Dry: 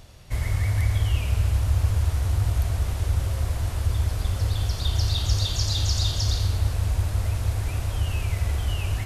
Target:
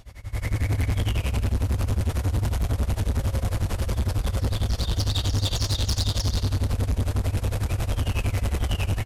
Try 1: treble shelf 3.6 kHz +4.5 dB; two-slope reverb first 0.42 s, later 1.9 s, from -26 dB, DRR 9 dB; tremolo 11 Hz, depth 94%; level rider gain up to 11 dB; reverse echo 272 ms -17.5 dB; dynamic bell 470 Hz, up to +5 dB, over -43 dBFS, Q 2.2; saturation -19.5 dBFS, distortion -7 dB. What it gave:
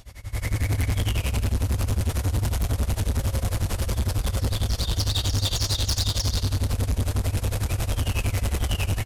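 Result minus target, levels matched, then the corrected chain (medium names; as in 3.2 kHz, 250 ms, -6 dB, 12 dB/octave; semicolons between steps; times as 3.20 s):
8 kHz band +4.0 dB
treble shelf 3.6 kHz -2 dB; two-slope reverb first 0.42 s, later 1.9 s, from -26 dB, DRR 9 dB; tremolo 11 Hz, depth 94%; level rider gain up to 11 dB; reverse echo 272 ms -17.5 dB; dynamic bell 470 Hz, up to +5 dB, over -43 dBFS, Q 2.2; saturation -19.5 dBFS, distortion -7 dB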